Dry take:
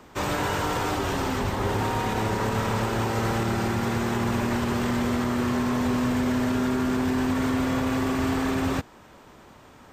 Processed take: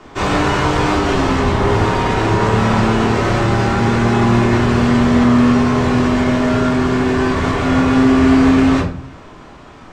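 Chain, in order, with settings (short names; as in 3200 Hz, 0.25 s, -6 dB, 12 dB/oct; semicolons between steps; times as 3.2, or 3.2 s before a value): LPF 6300 Hz 12 dB/oct; reverb RT60 0.45 s, pre-delay 3 ms, DRR -4.5 dB; gain +5 dB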